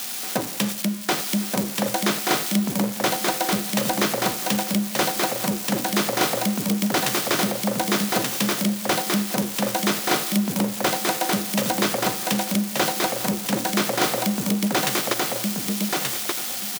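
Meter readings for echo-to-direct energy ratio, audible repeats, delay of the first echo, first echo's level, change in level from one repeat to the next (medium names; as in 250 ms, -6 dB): -3.0 dB, 2, 1180 ms, -3.0 dB, -14.5 dB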